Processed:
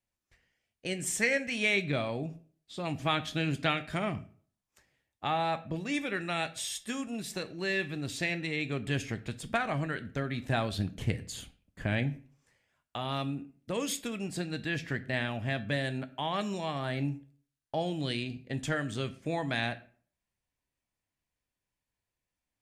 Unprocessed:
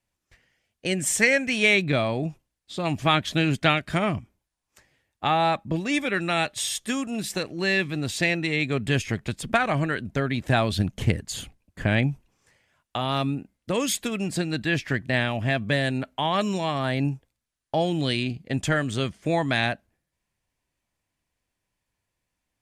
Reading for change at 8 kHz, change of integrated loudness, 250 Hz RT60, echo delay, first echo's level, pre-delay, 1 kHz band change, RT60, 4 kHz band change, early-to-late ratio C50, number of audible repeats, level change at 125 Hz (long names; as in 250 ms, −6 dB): −8.0 dB, −8.0 dB, 0.50 s, no echo audible, no echo audible, 9 ms, −8.0 dB, 0.50 s, −8.0 dB, 17.5 dB, no echo audible, −8.0 dB